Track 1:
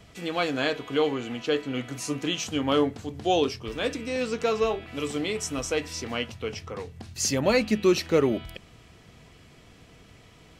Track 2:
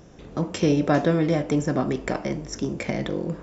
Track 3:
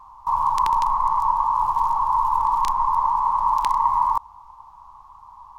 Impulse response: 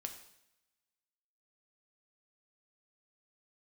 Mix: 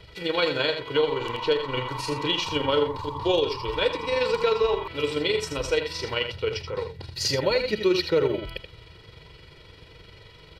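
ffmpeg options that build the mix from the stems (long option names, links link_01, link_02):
-filter_complex "[0:a]tremolo=f=23:d=0.462,highshelf=frequency=5400:width_type=q:width=3:gain=-6.5,aecho=1:1:2.1:0.79,volume=3dB,asplit=2[link_01][link_02];[link_02]volume=-8.5dB[link_03];[2:a]acompressor=threshold=-21dB:ratio=6,adelay=700,volume=-11dB[link_04];[link_03]aecho=0:1:79:1[link_05];[link_01][link_04][link_05]amix=inputs=3:normalize=0,alimiter=limit=-12.5dB:level=0:latency=1:release=221"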